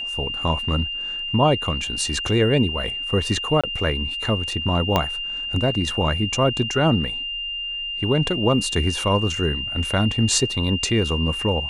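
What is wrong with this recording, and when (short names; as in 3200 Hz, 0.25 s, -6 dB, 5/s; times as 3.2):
tone 2800 Hz -26 dBFS
3.61–3.64 gap 26 ms
4.96 pop -5 dBFS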